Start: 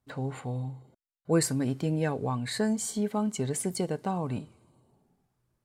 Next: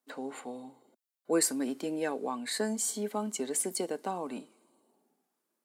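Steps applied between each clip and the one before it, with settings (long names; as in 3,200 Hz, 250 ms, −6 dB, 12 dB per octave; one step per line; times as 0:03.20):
Butterworth high-pass 230 Hz 36 dB per octave
high-shelf EQ 7,200 Hz +8 dB
level −2 dB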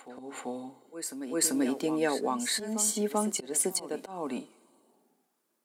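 volume swells 213 ms
backwards echo 389 ms −10.5 dB
level +4.5 dB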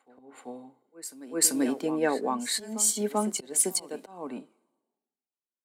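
multiband upward and downward expander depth 70%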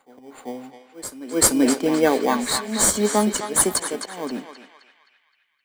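in parallel at −7 dB: sample-rate reduction 2,700 Hz, jitter 0%
on the sum: feedback echo with a band-pass in the loop 260 ms, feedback 57%, band-pass 2,300 Hz, level −4 dB
level +5.5 dB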